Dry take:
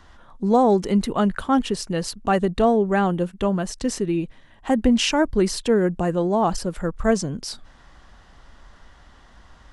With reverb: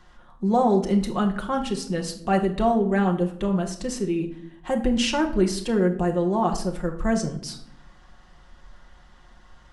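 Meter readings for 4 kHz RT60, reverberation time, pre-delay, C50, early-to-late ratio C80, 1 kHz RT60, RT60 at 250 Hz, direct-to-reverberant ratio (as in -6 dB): 0.45 s, 0.70 s, 5 ms, 10.5 dB, 14.5 dB, 0.60 s, 1.0 s, 2.0 dB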